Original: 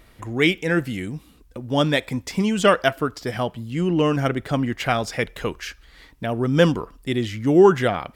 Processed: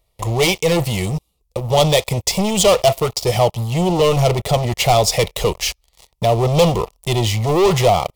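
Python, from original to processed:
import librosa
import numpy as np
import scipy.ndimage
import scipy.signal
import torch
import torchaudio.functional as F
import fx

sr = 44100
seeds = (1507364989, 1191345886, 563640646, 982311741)

y = fx.high_shelf(x, sr, hz=3700.0, db=3.0)
y = fx.leveller(y, sr, passes=5)
y = fx.fixed_phaser(y, sr, hz=650.0, stages=4)
y = y * librosa.db_to_amplitude(-3.0)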